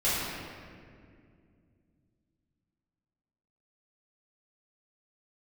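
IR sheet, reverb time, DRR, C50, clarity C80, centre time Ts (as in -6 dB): 2.2 s, -13.0 dB, -2.5 dB, -0.5 dB, 139 ms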